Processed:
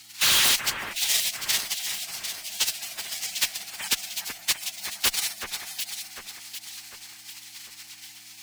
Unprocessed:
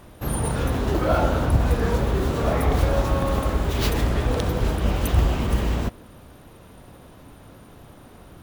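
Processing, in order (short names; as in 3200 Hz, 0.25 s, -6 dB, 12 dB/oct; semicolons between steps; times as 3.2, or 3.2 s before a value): inverse Chebyshev band-stop 230–540 Hz, stop band 50 dB; pre-emphasis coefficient 0.97; spectral gate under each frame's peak -25 dB weak; weighting filter D; sine folder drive 14 dB, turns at -23 dBFS; buzz 100 Hz, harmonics 3, -72 dBFS -2 dB/oct; in parallel at -8 dB: bit-crush 5-bit; on the sum: frequency shift +13 Hz; on a send: echo with dull and thin repeats by turns 0.374 s, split 2200 Hz, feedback 67%, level -5 dB; on the sum: gain +4 dB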